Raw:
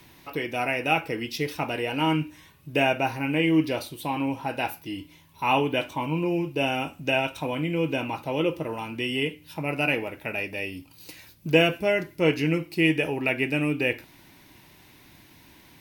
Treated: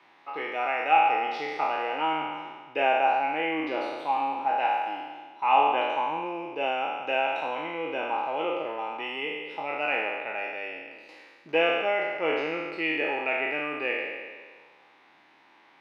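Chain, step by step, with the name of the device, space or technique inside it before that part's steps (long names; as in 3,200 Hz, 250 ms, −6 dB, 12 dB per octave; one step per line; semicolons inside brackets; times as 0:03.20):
peak hold with a decay on every bin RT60 1.57 s
tin-can telephone (band-pass filter 530–2,300 Hz; hollow resonant body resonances 820/1,200 Hz, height 9 dB)
level −3 dB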